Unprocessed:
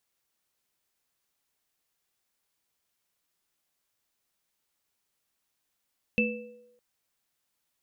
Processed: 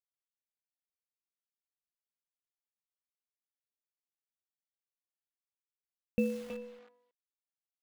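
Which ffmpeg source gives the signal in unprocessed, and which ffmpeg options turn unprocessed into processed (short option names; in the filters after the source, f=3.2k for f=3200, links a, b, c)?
-f lavfi -i "aevalsrc='0.0708*pow(10,-3*t/0.64)*sin(2*PI*221*t)+0.0447*pow(10,-3*t/0.99)*sin(2*PI*490*t)+0.0841*pow(10,-3*t/0.45)*sin(2*PI*2640*t)':d=0.61:s=44100"
-filter_complex "[0:a]lowpass=1.1k,acrusher=bits=9:dc=4:mix=0:aa=0.000001,asplit=2[a][b];[b]adelay=320,highpass=300,lowpass=3.4k,asoftclip=type=hard:threshold=-27.5dB,volume=-7dB[c];[a][c]amix=inputs=2:normalize=0"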